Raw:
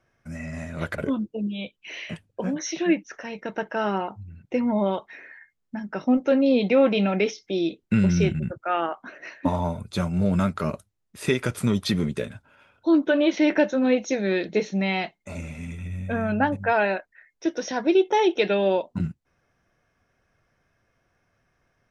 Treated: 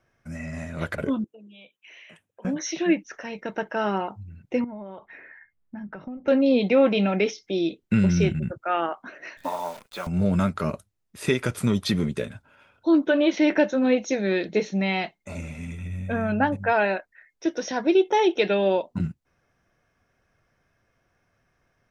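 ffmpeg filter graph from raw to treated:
-filter_complex "[0:a]asettb=1/sr,asplit=3[a][b][c];[a]atrim=end=1.244[d];[b]atrim=start=1.24:end=2.45,asetpts=PTS-STARTPTS,afade=t=in:d=0.004:c=qsin,afade=t=out:st=1.206:d=0.004:c=qsin,highpass=f=750:p=1,equalizer=f=4.6k:t=o:w=0.44:g=-13,acompressor=threshold=-48dB:ratio=3:attack=3.2:release=140:knee=1:detection=peak[e];[c]atrim=start=2.446[f];[d][e]acrossfade=d=0.004:c1=hsin:c2=qsin[g];[g][f]acrossfade=d=0.004:c1=qsin:c2=hsin,asettb=1/sr,asplit=3[h][i][j];[h]atrim=end=4.644[k];[i]atrim=start=4.64:end=6.28,asetpts=PTS-STARTPTS,afade=t=in:d=0.004:c=qsin,afade=t=out:st=1.636:d=0.004:c=qsin,lowpass=2.2k,acompressor=threshold=-33dB:ratio=12:attack=3.2:release=140:knee=1:detection=peak,asubboost=boost=4:cutoff=200[l];[j]atrim=start=6.276[m];[k][l]acrossfade=d=0.004:c1=hsin:c2=qsin[n];[n][m]acrossfade=d=0.004:c1=qsin:c2=hsin,asettb=1/sr,asplit=3[o][p][q];[o]atrim=end=9.374[r];[p]atrim=start=9.37:end=10.07,asetpts=PTS-STARTPTS,afade=t=in:d=0.004:c=qsin,afade=t=out:st=0.696:d=0.004:c=qsin,acrossover=split=3900[s][t];[t]acompressor=threshold=-54dB:ratio=4:attack=1:release=60[u];[s][u]amix=inputs=2:normalize=0,highpass=580,acrusher=bits=8:dc=4:mix=0:aa=0.000001[v];[q]atrim=start=10.066[w];[r][v]acrossfade=d=0.004:c1=hsin:c2=qsin[x];[x][w]acrossfade=d=0.004:c1=qsin:c2=hsin"

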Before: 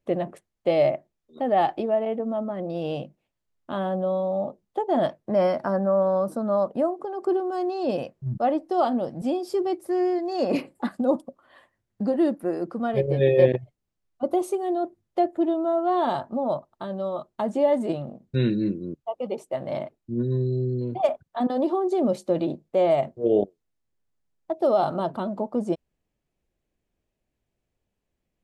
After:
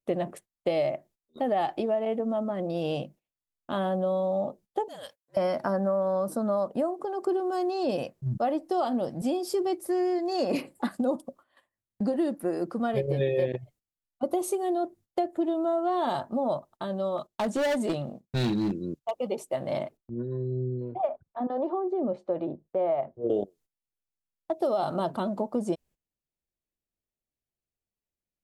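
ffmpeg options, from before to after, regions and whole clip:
-filter_complex "[0:a]asettb=1/sr,asplit=3[a][b][c];[a]atrim=end=4.884[d];[b]atrim=start=4.88:end=5.37,asetpts=PTS-STARTPTS,afade=t=in:d=0.004:c=qsin,afade=t=out:st=0.486:d=0.004:c=qsin,aderivative,afreqshift=-68[e];[c]atrim=start=5.366[f];[d][e]acrossfade=d=0.004:c1=hsin:c2=qsin[g];[g][f]acrossfade=d=0.004:c1=qsin:c2=hsin,asettb=1/sr,asplit=3[h][i][j];[h]atrim=end=17.184[k];[i]atrim=start=17.18:end=19.14,asetpts=PTS-STARTPTS,afade=t=in:d=0.004:c=qsin,afade=t=out:st=1.956:d=0.004:c=qsin,volume=21.5dB,asoftclip=hard,volume=-21.5dB,agate=range=-12dB:threshold=-50dB:ratio=16:release=100:detection=peak,equalizer=f=4.7k:t=o:w=2.1:g=4[l];[j]atrim=start=19.136[m];[k][l]acrossfade=d=0.004:c1=hsin:c2=qsin[n];[n][m]acrossfade=d=0.004:c1=qsin:c2=hsin,asettb=1/sr,asplit=3[o][p][q];[o]atrim=end=19.974[r];[p]atrim=start=19.97:end=23.3,asetpts=PTS-STARTPTS,afade=t=in:d=0.004:c=qsin,afade=t=out:st=3.326:d=0.004:c=qsin,lowpass=1.3k,equalizer=f=190:w=0.77:g=-5,acrossover=split=410[s][t];[s]aeval=exprs='val(0)*(1-0.5/2+0.5/2*cos(2*PI*1.5*n/s))':c=same[u];[t]aeval=exprs='val(0)*(1-0.5/2-0.5/2*cos(2*PI*1.5*n/s))':c=same[v];[u][v]amix=inputs=2:normalize=0[w];[q]atrim=start=23.296[x];[r][w]acrossfade=d=0.004:c1=hsin:c2=qsin[y];[y][x]acrossfade=d=0.004:c1=qsin:c2=hsin,agate=range=-16dB:threshold=-50dB:ratio=16:detection=peak,aemphasis=mode=production:type=cd,acompressor=threshold=-23dB:ratio=6"

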